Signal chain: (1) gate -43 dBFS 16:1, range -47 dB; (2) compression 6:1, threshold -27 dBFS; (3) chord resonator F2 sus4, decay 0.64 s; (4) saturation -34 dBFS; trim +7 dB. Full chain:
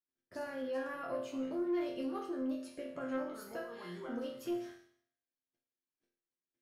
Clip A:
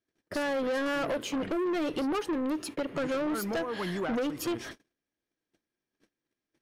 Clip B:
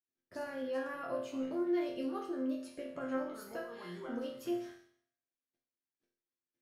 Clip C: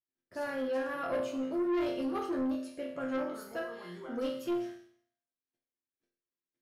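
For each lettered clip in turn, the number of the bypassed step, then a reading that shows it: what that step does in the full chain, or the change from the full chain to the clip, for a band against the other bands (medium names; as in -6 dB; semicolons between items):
3, 250 Hz band -5.5 dB; 4, distortion -22 dB; 2, mean gain reduction 5.0 dB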